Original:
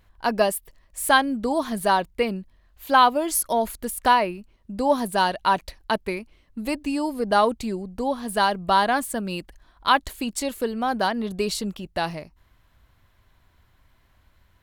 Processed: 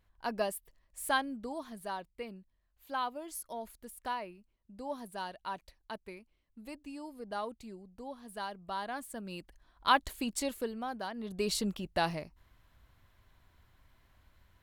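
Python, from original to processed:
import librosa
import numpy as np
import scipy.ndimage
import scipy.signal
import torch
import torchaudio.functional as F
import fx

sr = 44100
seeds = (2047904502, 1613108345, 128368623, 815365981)

y = fx.gain(x, sr, db=fx.line((1.17, -12.5), (1.78, -19.0), (8.76, -19.0), (9.92, -7.0), (10.45, -7.0), (11.06, -17.0), (11.56, -4.5)))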